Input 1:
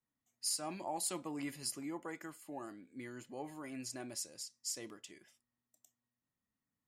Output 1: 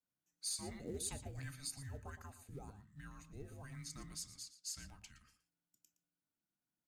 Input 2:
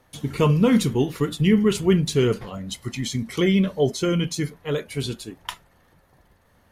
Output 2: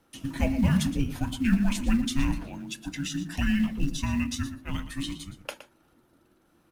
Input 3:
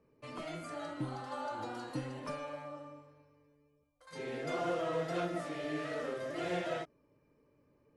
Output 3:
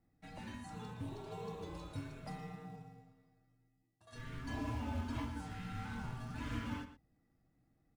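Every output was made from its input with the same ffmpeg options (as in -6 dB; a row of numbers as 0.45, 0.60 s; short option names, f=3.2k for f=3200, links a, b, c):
-filter_complex "[0:a]highpass=f=44:w=0.5412,highpass=f=44:w=1.3066,bandreject=f=50:t=h:w=6,bandreject=f=100:t=h:w=6,bandreject=f=150:t=h:w=6,bandreject=f=200:t=h:w=6,bandreject=f=250:t=h:w=6,bandreject=f=300:t=h:w=6,bandreject=f=350:t=h:w=6,bandreject=f=400:t=h:w=6,bandreject=f=450:t=h:w=6,afreqshift=-410,asplit=2[a][b];[b]acrusher=bits=4:mode=log:mix=0:aa=0.000001,volume=-8dB[c];[a][c]amix=inputs=2:normalize=0,asplit=2[d][e];[e]adelay=116.6,volume=-12dB,highshelf=f=4k:g=-2.62[f];[d][f]amix=inputs=2:normalize=0,volume=-7.5dB"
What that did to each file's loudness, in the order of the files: -5.0, -6.5, -5.5 LU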